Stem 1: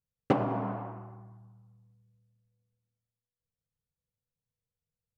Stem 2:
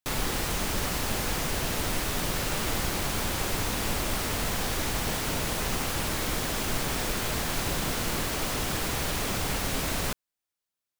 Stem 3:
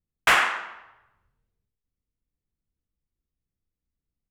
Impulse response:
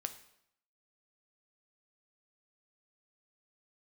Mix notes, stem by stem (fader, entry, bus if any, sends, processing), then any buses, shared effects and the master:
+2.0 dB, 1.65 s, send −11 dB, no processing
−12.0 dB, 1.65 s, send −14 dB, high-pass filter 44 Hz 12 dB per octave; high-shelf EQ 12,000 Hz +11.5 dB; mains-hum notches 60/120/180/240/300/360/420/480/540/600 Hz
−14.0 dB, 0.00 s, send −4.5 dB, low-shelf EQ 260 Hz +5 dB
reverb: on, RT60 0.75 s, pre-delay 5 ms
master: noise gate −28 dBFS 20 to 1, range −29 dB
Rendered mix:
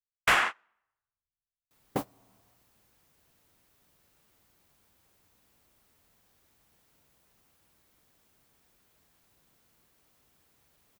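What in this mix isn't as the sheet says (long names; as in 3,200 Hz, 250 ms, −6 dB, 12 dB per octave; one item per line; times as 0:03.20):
stem 1 +2.0 dB → −6.5 dB
stem 2: send off
stem 3 −14.0 dB → −8.0 dB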